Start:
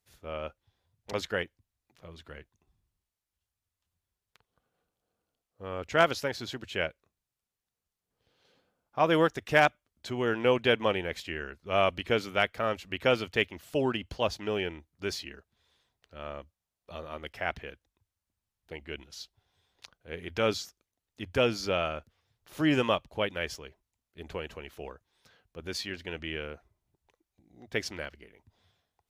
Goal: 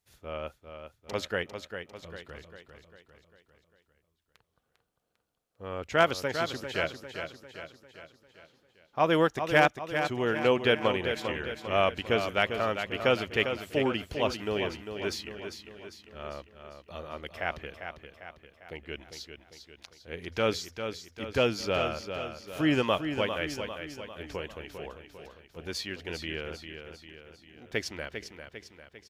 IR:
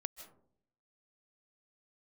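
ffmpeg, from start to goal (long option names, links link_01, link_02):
-af "aecho=1:1:399|798|1197|1596|1995|2394:0.398|0.203|0.104|0.0528|0.0269|0.0137"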